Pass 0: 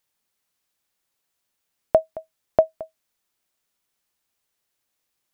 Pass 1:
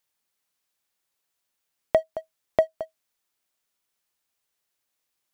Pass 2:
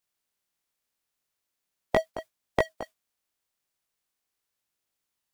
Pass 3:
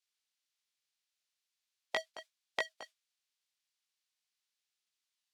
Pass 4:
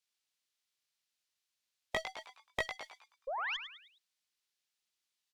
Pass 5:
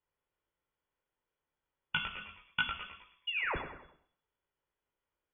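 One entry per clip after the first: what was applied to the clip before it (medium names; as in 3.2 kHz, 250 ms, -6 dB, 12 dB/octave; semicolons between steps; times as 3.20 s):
waveshaping leveller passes 1; in parallel at +1 dB: compression, threshold -23 dBFS, peak gain reduction 12.5 dB; on the sum: bass shelf 360 Hz -4 dB; trim -6.5 dB
spectral peaks clipped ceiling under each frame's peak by 19 dB; chorus voices 2, 0.41 Hz, delay 20 ms, depth 3 ms
band-pass filter 4 kHz, Q 0.95; trim +1 dB
painted sound rise, 3.27–3.57 s, 490–3600 Hz -37 dBFS; frequency-shifting echo 104 ms, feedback 40%, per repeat +120 Hz, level -9 dB; valve stage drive 22 dB, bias 0.65; trim +3.5 dB
reverberation RT60 0.65 s, pre-delay 10 ms, DRR 4 dB; frequency inversion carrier 3.4 kHz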